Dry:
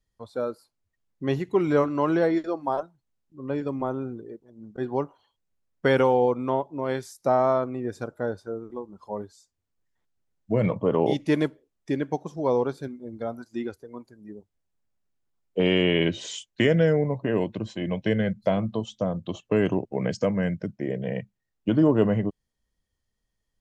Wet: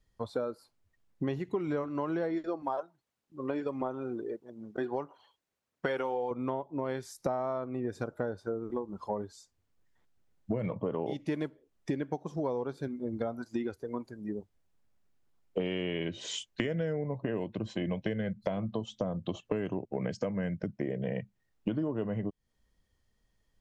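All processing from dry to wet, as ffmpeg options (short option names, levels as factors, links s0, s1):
-filter_complex "[0:a]asettb=1/sr,asplit=3[s0][s1][s2];[s0]atrim=end=2.624[s3];[s1]atrim=start=2.62:end=6.31,asetpts=PTS-STARTPTS,afade=t=in:d=0.004:c=qsin,afade=t=out:st=3.686:d=0.004:c=qsin,highpass=f=400:p=1,aphaser=in_gain=1:out_gain=1:delay=3.4:decay=0.32:speed=1.6:type=triangular[s4];[s2]atrim=start=6.306[s5];[s3][s4]acrossfade=d=0.004:c1=hsin:c2=qsin[s6];[s6][s5]acrossfade=d=0.004:c1=qsin:c2=hsin,acompressor=threshold=0.0158:ratio=8,highshelf=f=4900:g=-6,volume=2"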